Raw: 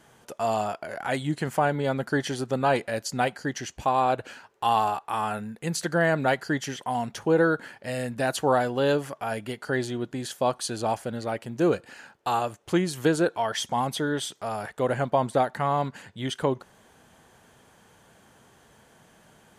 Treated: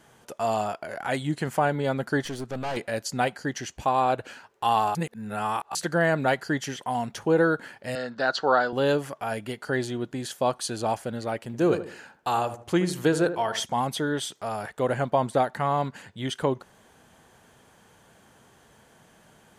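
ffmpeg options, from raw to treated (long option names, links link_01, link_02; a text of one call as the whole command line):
ffmpeg -i in.wav -filter_complex "[0:a]asettb=1/sr,asplit=3[link_01][link_02][link_03];[link_01]atrim=end=2.244[link_04];[link_02]atrim=start=2.24:end=2.77,asetpts=PTS-STARTPTS,afade=type=in:duration=0.004:curve=qsin,afade=type=out:start_time=0.526:duration=0.004:curve=qsin,aeval=exprs='(tanh(25.1*val(0)+0.55)-tanh(0.55))/25.1':channel_layout=same[link_05];[link_03]atrim=start=2.766[link_06];[link_04][link_05]acrossfade=duration=0.004:curve1=hsin:curve2=qsin[link_07];[link_07][link_06]acrossfade=duration=0.004:curve1=qsin:curve2=hsin,asettb=1/sr,asplit=3[link_08][link_09][link_10];[link_08]atrim=end=7.954[link_11];[link_09]atrim=start=7.95:end=8.73,asetpts=PTS-STARTPTS,afade=type=in:duration=0.004:curve=qsin,afade=type=out:start_time=0.776:duration=0.004:curve=qsin,highpass=250,equalizer=frequency=300:width_type=q:width=4:gain=-4,equalizer=frequency=1400:width_type=q:width=4:gain=10,equalizer=frequency=2400:width_type=q:width=4:gain=-9,equalizer=frequency=4400:width_type=q:width=4:gain=9,lowpass=frequency=5400:width=0.5412,lowpass=frequency=5400:width=1.3066[link_12];[link_10]atrim=start=8.726[link_13];[link_11][link_12]acrossfade=duration=0.004:curve1=hsin:curve2=qsin[link_14];[link_14][link_13]acrossfade=duration=0.004:curve1=qsin:curve2=hsin,asettb=1/sr,asplit=3[link_15][link_16][link_17];[link_15]atrim=end=11.374[link_18];[link_16]atrim=start=11.37:end=13.65,asetpts=PTS-STARTPTS,afade=type=in:duration=0.004:curve=qsin,afade=type=out:start_time=2.276:duration=0.004:curve=qsin,asplit=2[link_19][link_20];[link_20]adelay=77,lowpass=frequency=1100:poles=1,volume=-9.5dB,asplit=2[link_21][link_22];[link_22]adelay=77,lowpass=frequency=1100:poles=1,volume=0.37,asplit=2[link_23][link_24];[link_24]adelay=77,lowpass=frequency=1100:poles=1,volume=0.37,asplit=2[link_25][link_26];[link_26]adelay=77,lowpass=frequency=1100:poles=1,volume=0.37[link_27];[link_19][link_21][link_23][link_25][link_27]amix=inputs=5:normalize=0,atrim=end_sample=100548[link_28];[link_17]atrim=start=13.646[link_29];[link_18][link_28]acrossfade=duration=0.004:curve1=hsin:curve2=qsin[link_30];[link_30][link_29]acrossfade=duration=0.004:curve1=qsin:curve2=hsin,asplit=3[link_31][link_32][link_33];[link_31]atrim=end=4.952[link_34];[link_32]atrim=start=4.948:end=5.752,asetpts=PTS-STARTPTS,areverse[link_35];[link_33]atrim=start=5.748[link_36];[link_34][link_35]acrossfade=duration=0.004:curve1=hsin:curve2=hsin[link_37];[link_37][link_36]acrossfade=duration=0.004:curve1=hsin:curve2=hsin" out.wav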